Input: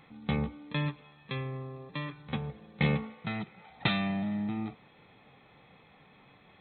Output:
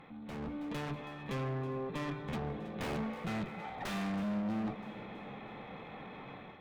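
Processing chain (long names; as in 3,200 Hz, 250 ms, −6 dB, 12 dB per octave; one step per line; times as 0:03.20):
wrap-around overflow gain 21 dB
parametric band 87 Hz −5.5 dB 2.1 octaves
tube saturation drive 46 dB, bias 0.3
in parallel at −2 dB: downward compressor, threshold −57 dBFS, peak gain reduction 10 dB
on the sum: echo with a time of its own for lows and highs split 580 Hz, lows 471 ms, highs 324 ms, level −16 dB
on a send at −18 dB: convolution reverb RT60 2.7 s, pre-delay 110 ms
on the sum: automatic gain control gain up to 8.5 dB
high-shelf EQ 2,200 Hz −11.5 dB
mains-hum notches 50/100/150 Hz
level +2 dB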